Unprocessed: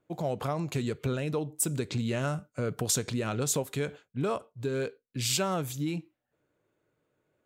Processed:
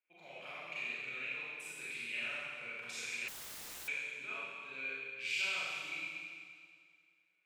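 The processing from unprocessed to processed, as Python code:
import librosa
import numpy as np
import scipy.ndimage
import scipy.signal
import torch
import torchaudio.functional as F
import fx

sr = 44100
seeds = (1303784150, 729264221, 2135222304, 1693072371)

y = fx.bandpass_q(x, sr, hz=2400.0, q=9.1)
y = fx.rev_schroeder(y, sr, rt60_s=2.1, comb_ms=30, drr_db=-10.0)
y = fx.overflow_wrap(y, sr, gain_db=44.0, at=(3.28, 3.88))
y = y * librosa.db_to_amplitude(1.0)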